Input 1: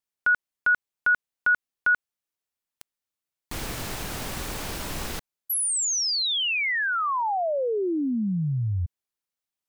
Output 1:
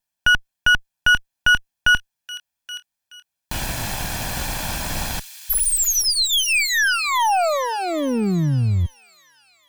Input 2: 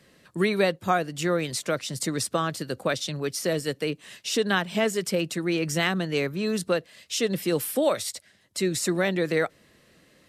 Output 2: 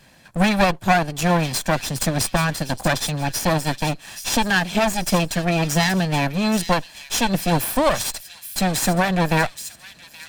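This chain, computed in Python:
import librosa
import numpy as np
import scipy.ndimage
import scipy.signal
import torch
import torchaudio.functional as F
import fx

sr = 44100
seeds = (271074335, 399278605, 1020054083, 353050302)

y = fx.lower_of_two(x, sr, delay_ms=1.2)
y = fx.echo_wet_highpass(y, sr, ms=825, feedback_pct=30, hz=3100.0, wet_db=-9.0)
y = y * librosa.db_to_amplitude(8.0)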